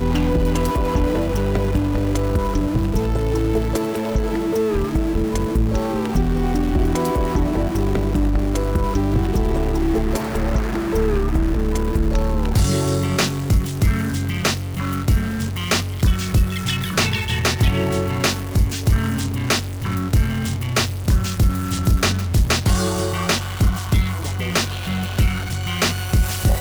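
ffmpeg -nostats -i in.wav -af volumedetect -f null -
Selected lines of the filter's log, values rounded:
mean_volume: -18.8 dB
max_volume: -8.0 dB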